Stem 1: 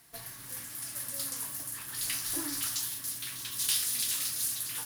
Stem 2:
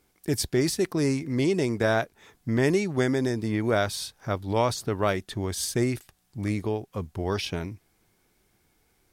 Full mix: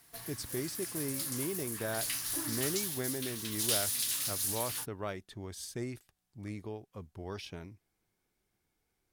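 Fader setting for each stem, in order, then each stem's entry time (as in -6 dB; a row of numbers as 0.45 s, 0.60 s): -2.0 dB, -13.5 dB; 0.00 s, 0.00 s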